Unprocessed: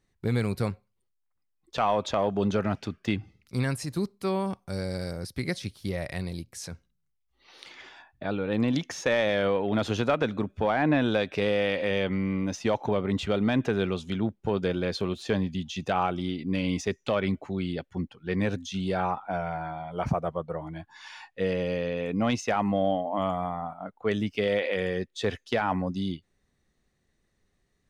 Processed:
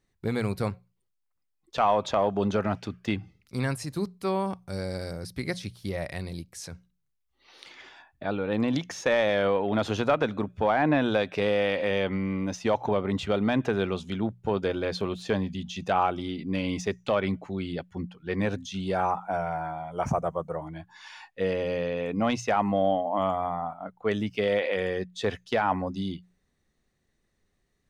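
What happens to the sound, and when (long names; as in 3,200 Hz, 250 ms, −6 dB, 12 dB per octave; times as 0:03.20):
0:18.94–0:20.67: high shelf with overshoot 5,200 Hz +6.5 dB, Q 3
whole clip: mains-hum notches 60/120/180 Hz; dynamic equaliser 870 Hz, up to +4 dB, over −37 dBFS, Q 0.88; level −1 dB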